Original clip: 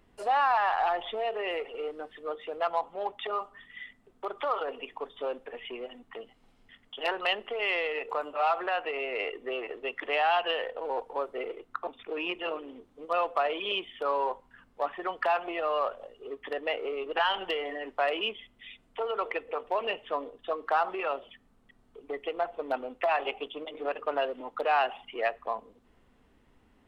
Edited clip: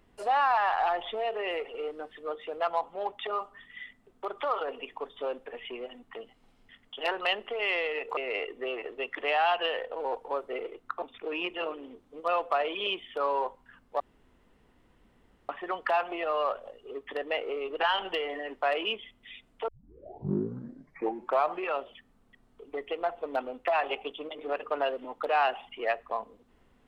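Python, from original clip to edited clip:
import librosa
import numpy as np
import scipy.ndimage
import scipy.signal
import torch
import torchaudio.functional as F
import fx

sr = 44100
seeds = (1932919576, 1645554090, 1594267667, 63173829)

y = fx.edit(x, sr, fx.cut(start_s=8.17, length_s=0.85),
    fx.insert_room_tone(at_s=14.85, length_s=1.49),
    fx.tape_start(start_s=19.04, length_s=1.98), tone=tone)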